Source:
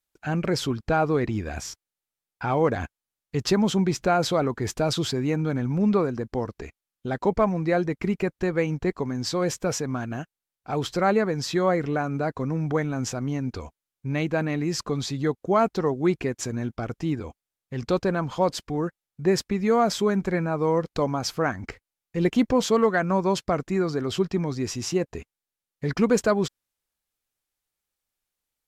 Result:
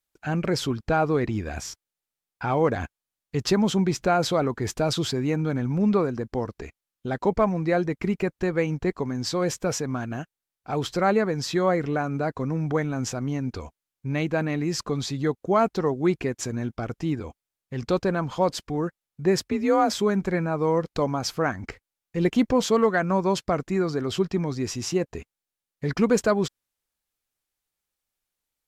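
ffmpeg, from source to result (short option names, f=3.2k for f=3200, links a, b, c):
-filter_complex "[0:a]asettb=1/sr,asplit=3[a][b][c];[a]atrim=end=19.404[d];[b]atrim=start=19.4:end=19.95,asetpts=PTS-STARTPTS,afade=t=in:d=0.004:c=qsin,afade=t=out:st=0.546:d=0.004:c=qsin,afreqshift=40[e];[c]atrim=start=19.946[f];[d][e]acrossfade=d=0.004:c1=hsin:c2=qsin[g];[g][f]acrossfade=d=0.004:c1=qsin:c2=hsin"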